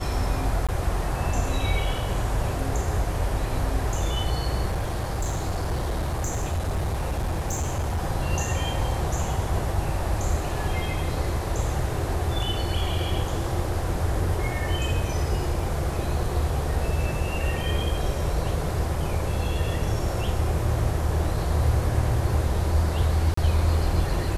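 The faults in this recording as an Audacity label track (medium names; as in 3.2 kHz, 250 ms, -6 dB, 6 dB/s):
0.670000	0.690000	dropout 16 ms
4.700000	8.010000	clipped -22 dBFS
23.340000	23.370000	dropout 34 ms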